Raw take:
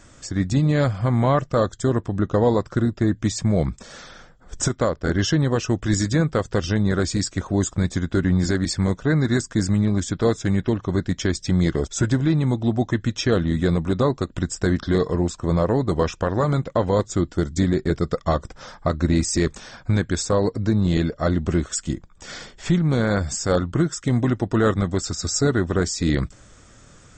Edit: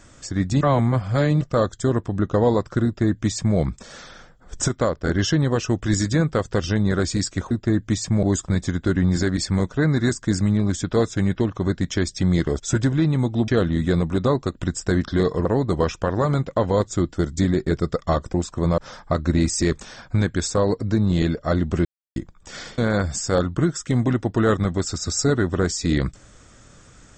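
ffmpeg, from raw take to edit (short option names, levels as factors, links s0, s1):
-filter_complex "[0:a]asplit=12[s0][s1][s2][s3][s4][s5][s6][s7][s8][s9][s10][s11];[s0]atrim=end=0.612[s12];[s1]atrim=start=0.608:end=1.412,asetpts=PTS-STARTPTS,areverse[s13];[s2]atrim=start=1.408:end=7.512[s14];[s3]atrim=start=2.848:end=3.572[s15];[s4]atrim=start=7.508:end=12.762[s16];[s5]atrim=start=13.228:end=15.202[s17];[s6]atrim=start=15.638:end=18.532[s18];[s7]atrim=start=15.198:end=15.642[s19];[s8]atrim=start=18.528:end=21.6,asetpts=PTS-STARTPTS,afade=t=out:st=3.068:d=0.004:c=hsin[s20];[s9]atrim=start=21.6:end=21.91,asetpts=PTS-STARTPTS,volume=0[s21];[s10]atrim=start=21.91:end=22.532,asetpts=PTS-STARTPTS,afade=t=in:d=0.004:c=hsin[s22];[s11]atrim=start=22.948[s23];[s12][s13]acrossfade=d=0.004:c1=hsin:c2=hsin[s24];[s24][s14]acrossfade=d=0.004:c1=hsin:c2=hsin[s25];[s25][s15]acrossfade=d=0.004:c1=hsin:c2=hsin[s26];[s26][s16]acrossfade=d=0.004:c1=hsin:c2=hsin[s27];[s27][s17]acrossfade=d=0.004:c1=hsin:c2=hsin[s28];[s28][s18]acrossfade=d=0.004:c1=hsin:c2=hsin[s29];[s29][s19]acrossfade=d=0.004:c1=hsin:c2=hsin[s30];[s20][s21][s22]concat=n=3:v=0:a=1[s31];[s30][s31]acrossfade=d=0.004:c1=hsin:c2=hsin[s32];[s32][s23]acrossfade=d=0.004:c1=hsin:c2=hsin"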